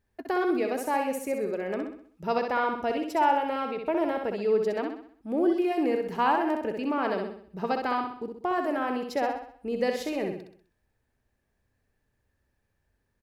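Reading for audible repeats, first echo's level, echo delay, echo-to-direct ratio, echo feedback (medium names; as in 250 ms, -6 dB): 5, -5.0 dB, 64 ms, -4.0 dB, 45%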